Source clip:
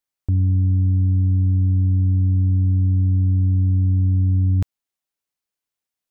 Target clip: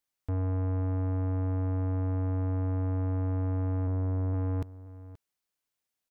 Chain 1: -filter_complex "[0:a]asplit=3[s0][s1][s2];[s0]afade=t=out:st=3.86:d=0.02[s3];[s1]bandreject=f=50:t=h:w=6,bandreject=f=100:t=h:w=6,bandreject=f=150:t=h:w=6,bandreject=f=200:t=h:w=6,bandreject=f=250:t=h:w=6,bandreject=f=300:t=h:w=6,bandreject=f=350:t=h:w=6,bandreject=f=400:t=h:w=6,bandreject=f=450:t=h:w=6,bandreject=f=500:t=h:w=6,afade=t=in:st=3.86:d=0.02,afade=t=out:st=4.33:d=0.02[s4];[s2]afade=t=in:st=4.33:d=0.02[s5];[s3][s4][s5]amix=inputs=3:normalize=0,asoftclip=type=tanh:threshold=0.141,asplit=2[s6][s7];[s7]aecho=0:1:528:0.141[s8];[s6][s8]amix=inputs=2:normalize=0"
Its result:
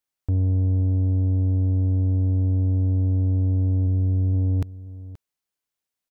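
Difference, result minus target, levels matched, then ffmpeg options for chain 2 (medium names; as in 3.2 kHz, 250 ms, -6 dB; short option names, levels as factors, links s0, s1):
saturation: distortion -9 dB
-filter_complex "[0:a]asplit=3[s0][s1][s2];[s0]afade=t=out:st=3.86:d=0.02[s3];[s1]bandreject=f=50:t=h:w=6,bandreject=f=100:t=h:w=6,bandreject=f=150:t=h:w=6,bandreject=f=200:t=h:w=6,bandreject=f=250:t=h:w=6,bandreject=f=300:t=h:w=6,bandreject=f=350:t=h:w=6,bandreject=f=400:t=h:w=6,bandreject=f=450:t=h:w=6,bandreject=f=500:t=h:w=6,afade=t=in:st=3.86:d=0.02,afade=t=out:st=4.33:d=0.02[s4];[s2]afade=t=in:st=4.33:d=0.02[s5];[s3][s4][s5]amix=inputs=3:normalize=0,asoftclip=type=tanh:threshold=0.0398,asplit=2[s6][s7];[s7]aecho=0:1:528:0.141[s8];[s6][s8]amix=inputs=2:normalize=0"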